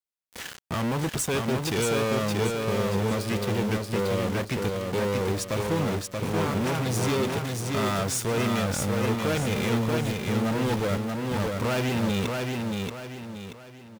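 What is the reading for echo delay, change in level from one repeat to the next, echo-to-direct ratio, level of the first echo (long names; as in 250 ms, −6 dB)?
631 ms, −8.5 dB, −3.0 dB, −3.5 dB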